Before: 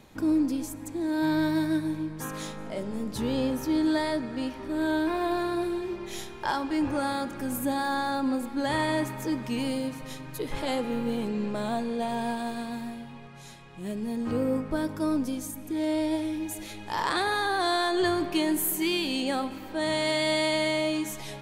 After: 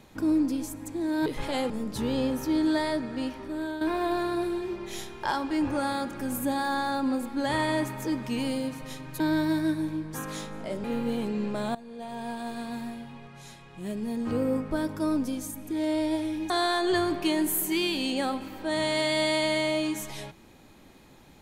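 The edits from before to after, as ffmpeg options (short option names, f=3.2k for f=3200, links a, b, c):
-filter_complex "[0:a]asplit=8[a][b][c][d][e][f][g][h];[a]atrim=end=1.262[i];[b]atrim=start=10.398:end=10.842[j];[c]atrim=start=2.898:end=5.01,asetpts=PTS-STARTPTS,afade=t=out:st=1.612:d=0.5:silence=0.298538[k];[d]atrim=start=5.01:end=10.402,asetpts=PTS-STARTPTS,afade=t=in:d=0.004:c=hsin:silence=0.298538[l];[e]atrim=start=1.258:end=2.902[m];[f]atrim=start=10.838:end=11.75,asetpts=PTS-STARTPTS,afade=t=out:st=0.908:d=0.004:c=hsin:silence=0.112202[n];[g]atrim=start=11.75:end=16.502,asetpts=PTS-STARTPTS,afade=t=in:d=1.04:silence=0.112202[o];[h]atrim=start=17.598[p];[i][j]acrossfade=d=0.004:c1=hsin:c2=hsin[q];[k][l]concat=n=2:v=0:a=1[r];[q][r]acrossfade=d=0.004:c1=hsin:c2=hsin[s];[s][m]acrossfade=d=0.004:c1=hsin:c2=hsin[t];[n][o]concat=n=2:v=0:a=1[u];[t][u]acrossfade=d=0.004:c1=hsin:c2=hsin[v];[v][p]acrossfade=d=0.004:c1=hsin:c2=hsin"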